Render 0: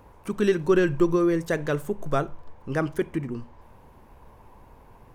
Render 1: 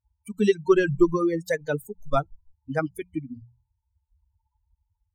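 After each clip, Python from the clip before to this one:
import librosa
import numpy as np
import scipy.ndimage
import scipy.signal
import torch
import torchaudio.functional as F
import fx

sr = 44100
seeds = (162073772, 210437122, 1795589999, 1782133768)

y = fx.bin_expand(x, sr, power=3.0)
y = fx.hum_notches(y, sr, base_hz=60, count=3)
y = y * librosa.db_to_amplitude(5.5)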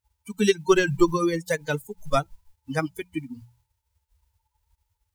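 y = fx.envelope_flatten(x, sr, power=0.6)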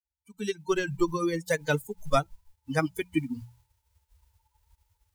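y = fx.fade_in_head(x, sr, length_s=1.69)
y = fx.rider(y, sr, range_db=4, speed_s=0.5)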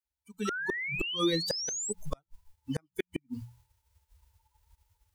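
y = fx.gate_flip(x, sr, shuts_db=-19.0, range_db=-41)
y = fx.spec_paint(y, sr, seeds[0], shape='rise', start_s=0.45, length_s=1.48, low_hz=1300.0, high_hz=8200.0, level_db=-35.0)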